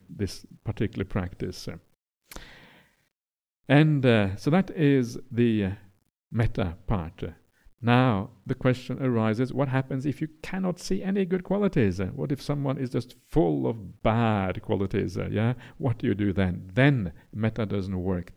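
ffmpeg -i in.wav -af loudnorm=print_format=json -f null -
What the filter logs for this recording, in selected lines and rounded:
"input_i" : "-26.8",
"input_tp" : "-7.3",
"input_lra" : "2.9",
"input_thresh" : "-37.2",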